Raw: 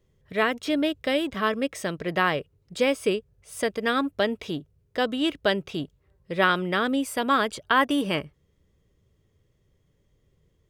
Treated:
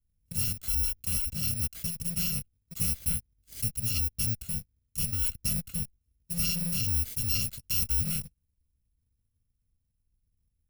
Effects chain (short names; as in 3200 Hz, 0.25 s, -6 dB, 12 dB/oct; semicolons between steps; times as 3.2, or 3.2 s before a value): FFT order left unsorted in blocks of 128 samples; dynamic EQ 7900 Hz, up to -7 dB, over -38 dBFS, Q 1.3; sample leveller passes 3; passive tone stack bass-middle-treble 10-0-1; gain +6 dB